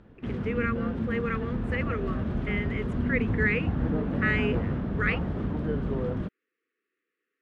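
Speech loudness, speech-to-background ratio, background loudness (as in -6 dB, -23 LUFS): -32.0 LUFS, -2.0 dB, -30.0 LUFS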